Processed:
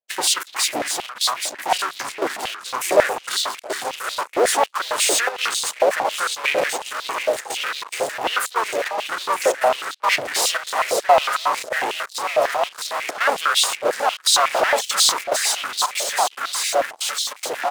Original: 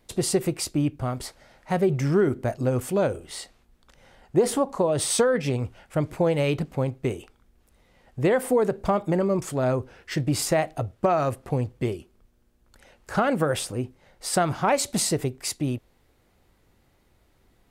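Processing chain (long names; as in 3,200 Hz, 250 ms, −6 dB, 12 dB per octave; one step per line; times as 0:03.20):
feedback delay that plays each chunk backwards 594 ms, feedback 73%, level −9 dB
leveller curve on the samples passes 3
gate pattern ".xxx.xxxxx" 142 BPM −24 dB
pitch-shifted copies added −4 semitones −2 dB
in parallel at −6 dB: fuzz pedal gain 40 dB, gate −42 dBFS
on the sum: high-pass on a step sequencer 11 Hz 610–3,800 Hz
level −7.5 dB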